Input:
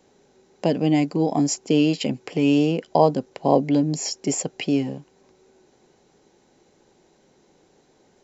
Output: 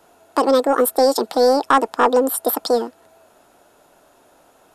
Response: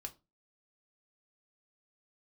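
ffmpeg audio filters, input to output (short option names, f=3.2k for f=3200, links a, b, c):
-af "acontrast=73,asetrate=76440,aresample=44100,volume=-1.5dB"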